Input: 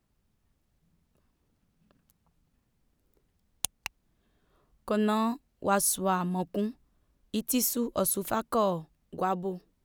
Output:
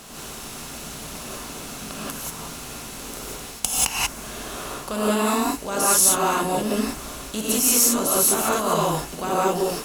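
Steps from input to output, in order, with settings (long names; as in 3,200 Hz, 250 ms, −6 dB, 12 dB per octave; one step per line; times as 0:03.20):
compressor on every frequency bin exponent 0.6
reversed playback
downward compressor 4 to 1, threshold −36 dBFS, peak gain reduction 14.5 dB
reversed playback
parametric band 5,200 Hz +10 dB 2.8 octaves
reverb whose tail is shaped and stops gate 210 ms rising, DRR −8 dB
dynamic equaliser 3,800 Hz, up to −6 dB, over −47 dBFS, Q 2
level +6.5 dB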